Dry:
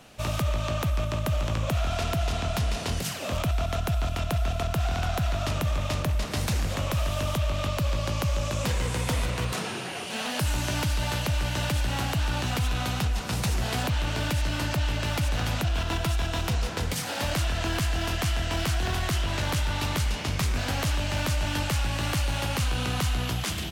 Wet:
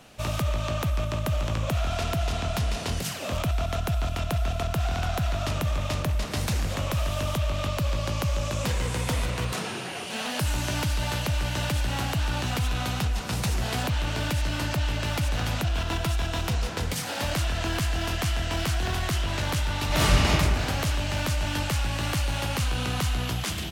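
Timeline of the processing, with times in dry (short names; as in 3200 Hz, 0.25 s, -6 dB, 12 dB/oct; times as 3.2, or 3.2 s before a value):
19.87–20.28 reverb throw, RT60 1.8 s, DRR -9 dB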